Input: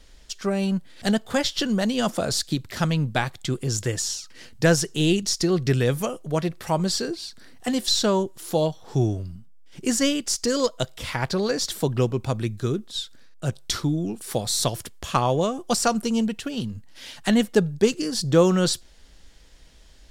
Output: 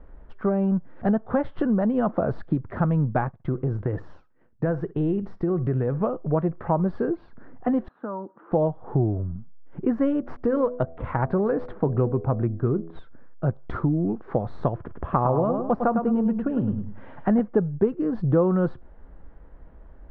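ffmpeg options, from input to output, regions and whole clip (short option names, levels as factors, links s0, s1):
-filter_complex "[0:a]asettb=1/sr,asplit=3[s0][s1][s2];[s0]atrim=end=3.274[s3];[s1]atrim=start=3.27:end=6.01,asetpts=PTS-STARTPTS,afade=t=in:d=0.004:c=qsin,afade=t=out:st=2.736:d=0.004:c=qsin,agate=range=0.0224:threshold=0.0251:ratio=3:release=100:detection=peak,acompressor=threshold=0.0501:ratio=3:attack=3.2:release=140:knee=1:detection=peak,aecho=1:1:62|124:0.106|0.0265,atrim=end_sample=120834[s4];[s2]atrim=start=6.006[s5];[s3][s4]acrossfade=d=0.004:c1=hsin:c2=qsin[s6];[s6][s5]acrossfade=d=0.004:c1=qsin:c2=hsin,asettb=1/sr,asplit=3[s7][s8][s9];[s7]atrim=end=7.884[s10];[s8]atrim=start=7.88:end=8.52,asetpts=PTS-STARTPTS,afade=t=in:d=0.004:c=qsin,afade=t=out:st=0.636:d=0.004:c=qsin,acompressor=threshold=0.0282:ratio=6:attack=3.2:release=140:knee=1:detection=peak,highpass=f=220:w=0.5412,highpass=f=220:w=1.3066,equalizer=f=380:t=q:w=4:g=-9,equalizer=f=670:t=q:w=4:g=-5,equalizer=f=1300:t=q:w=4:g=4,equalizer=f=2100:t=q:w=4:g=-5,lowpass=f=2300:w=0.5412,lowpass=f=2300:w=1.3066[s11];[s9]atrim=start=8.516[s12];[s10][s11]acrossfade=d=0.004:c1=hsin:c2=qsin[s13];[s13][s12]acrossfade=d=0.004:c1=qsin:c2=hsin,asettb=1/sr,asplit=3[s14][s15][s16];[s14]atrim=end=9.984[s17];[s15]atrim=start=9.98:end=12.99,asetpts=PTS-STARTPTS,afade=t=in:d=0.004:c=qsin,afade=t=out:st=3.006:d=0.004:c=qsin,bandreject=f=82.42:t=h:w=4,bandreject=f=164.84:t=h:w=4,bandreject=f=247.26:t=h:w=4,bandreject=f=329.68:t=h:w=4,bandreject=f=412.1:t=h:w=4,bandreject=f=494.52:t=h:w=4,bandreject=f=576.94:t=h:w=4,bandreject=f=659.36:t=h:w=4,bandreject=f=741.78:t=h:w=4,adynamicsmooth=sensitivity=7:basefreq=2000[s18];[s16]atrim=start=12.986[s19];[s17][s18]acrossfade=d=0.004:c1=hsin:c2=qsin[s20];[s20][s19]acrossfade=d=0.004:c1=qsin:c2=hsin,asettb=1/sr,asplit=3[s21][s22][s23];[s21]atrim=end=14.784[s24];[s22]atrim=start=14.78:end=17.4,asetpts=PTS-STARTPTS,afade=t=in:d=0.004:c=qsin,afade=t=out:st=2.616:d=0.004:c=qsin,aemphasis=mode=reproduction:type=50fm,aecho=1:1:104|208|312:0.447|0.116|0.0302,atrim=end_sample=115542[s25];[s23]atrim=start=17.396[s26];[s24][s25]acrossfade=d=0.004:c1=hsin:c2=qsin[s27];[s27][s26]acrossfade=d=0.004:c1=qsin:c2=hsin,lowpass=f=1300:w=0.5412,lowpass=f=1300:w=1.3066,acompressor=threshold=0.0447:ratio=2.5,volume=2"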